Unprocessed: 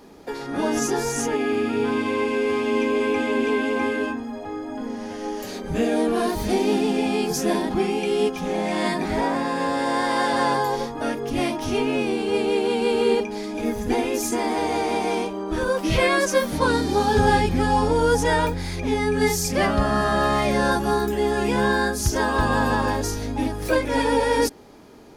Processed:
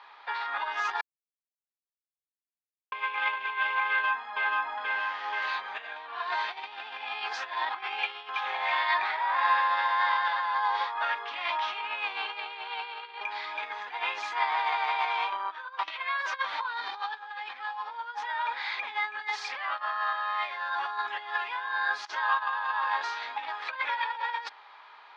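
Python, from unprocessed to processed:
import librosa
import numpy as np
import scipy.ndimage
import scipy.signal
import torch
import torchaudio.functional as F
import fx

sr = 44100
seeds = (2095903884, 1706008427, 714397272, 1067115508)

y = fx.echo_throw(x, sr, start_s=3.88, length_s=0.55, ms=480, feedback_pct=80, wet_db=-2.5)
y = fx.over_compress(y, sr, threshold_db=-31.0, ratio=-0.5, at=(15.32, 15.88))
y = fx.edit(y, sr, fx.silence(start_s=1.01, length_s=1.91), tone=tone)
y = fx.high_shelf(y, sr, hz=3000.0, db=-9.0)
y = fx.over_compress(y, sr, threshold_db=-25.0, ratio=-0.5)
y = scipy.signal.sosfilt(scipy.signal.cheby1(3, 1.0, [960.0, 3900.0], 'bandpass', fs=sr, output='sos'), y)
y = F.gain(torch.from_numpy(y), 5.0).numpy()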